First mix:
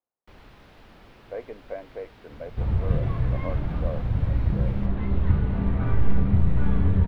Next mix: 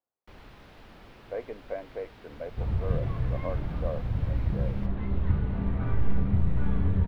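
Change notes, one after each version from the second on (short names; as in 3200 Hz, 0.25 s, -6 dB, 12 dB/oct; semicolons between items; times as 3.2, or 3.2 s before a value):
second sound -4.5 dB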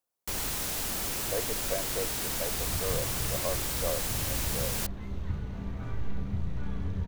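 first sound +11.5 dB; second sound -8.0 dB; master: remove air absorption 370 m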